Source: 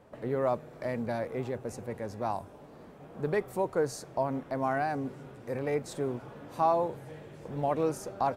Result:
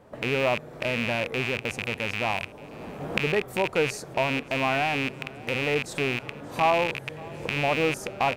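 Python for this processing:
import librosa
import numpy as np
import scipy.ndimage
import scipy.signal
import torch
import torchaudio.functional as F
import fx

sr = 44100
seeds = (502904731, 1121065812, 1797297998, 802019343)

y = fx.rattle_buzz(x, sr, strikes_db=-43.0, level_db=-20.0)
y = fx.recorder_agc(y, sr, target_db=-24.0, rise_db_per_s=19.0, max_gain_db=30)
y = y + 10.0 ** (-22.0 / 20.0) * np.pad(y, (int(578 * sr / 1000.0), 0))[:len(y)]
y = y * librosa.db_to_amplitude(3.5)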